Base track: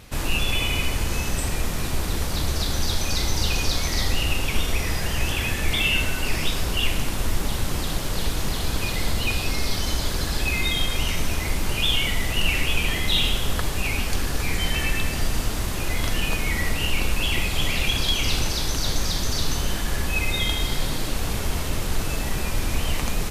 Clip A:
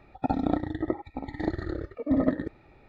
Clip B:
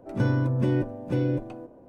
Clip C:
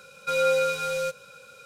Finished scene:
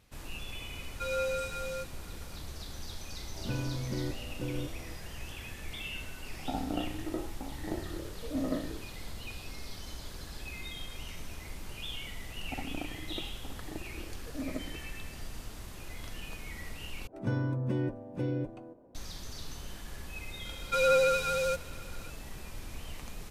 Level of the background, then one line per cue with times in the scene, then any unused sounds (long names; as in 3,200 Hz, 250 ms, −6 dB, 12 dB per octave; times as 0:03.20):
base track −18.5 dB
0:00.73: mix in C −10 dB
0:03.29: mix in B −11.5 dB
0:06.24: mix in A −10.5 dB + peak hold with a decay on every bin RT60 0.46 s
0:12.28: mix in A −14 dB
0:17.07: overwrite with B −7.5 dB
0:20.45: mix in C −2 dB + pitch vibrato 13 Hz 30 cents